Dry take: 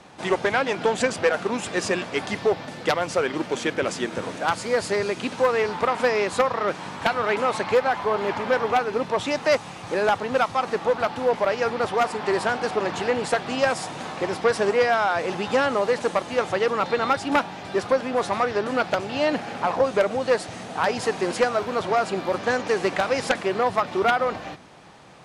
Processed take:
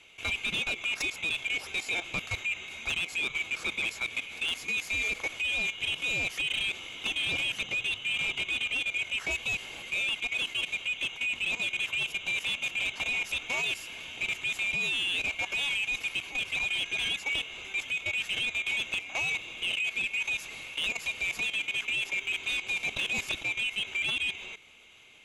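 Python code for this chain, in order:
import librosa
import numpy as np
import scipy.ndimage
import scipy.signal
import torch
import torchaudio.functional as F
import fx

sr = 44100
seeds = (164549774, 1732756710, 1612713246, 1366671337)

y = fx.band_swap(x, sr, width_hz=2000)
y = fx.level_steps(y, sr, step_db=14)
y = 10.0 ** (-23.0 / 20.0) * np.tanh(y / 10.0 ** (-23.0 / 20.0))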